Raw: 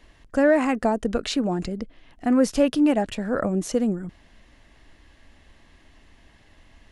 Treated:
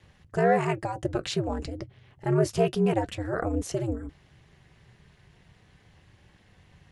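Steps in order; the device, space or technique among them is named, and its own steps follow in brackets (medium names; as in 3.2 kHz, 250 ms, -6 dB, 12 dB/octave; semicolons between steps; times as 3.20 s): alien voice (ring modulator 110 Hz; flange 0.32 Hz, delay 3.5 ms, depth 1.8 ms, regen -69%); trim +3 dB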